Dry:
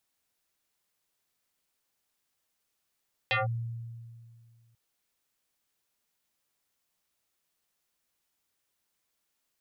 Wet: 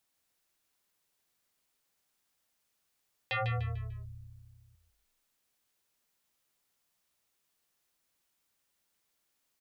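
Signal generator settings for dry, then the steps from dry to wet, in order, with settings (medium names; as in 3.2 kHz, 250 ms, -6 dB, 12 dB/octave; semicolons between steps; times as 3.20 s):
FM tone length 1.44 s, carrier 116 Hz, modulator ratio 5.59, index 5.4, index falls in 0.16 s linear, decay 2.15 s, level -23 dB
peak limiter -29 dBFS; frequency-shifting echo 148 ms, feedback 38%, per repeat -33 Hz, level -7 dB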